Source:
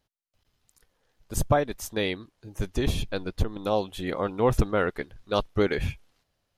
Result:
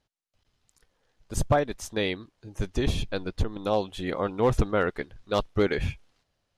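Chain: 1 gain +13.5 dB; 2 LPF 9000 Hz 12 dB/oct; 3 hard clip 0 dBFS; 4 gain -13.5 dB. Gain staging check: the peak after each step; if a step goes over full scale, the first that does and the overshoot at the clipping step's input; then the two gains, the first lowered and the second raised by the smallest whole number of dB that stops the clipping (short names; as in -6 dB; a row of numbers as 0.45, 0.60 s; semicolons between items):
+5.0, +5.0, 0.0, -13.5 dBFS; step 1, 5.0 dB; step 1 +8.5 dB, step 4 -8.5 dB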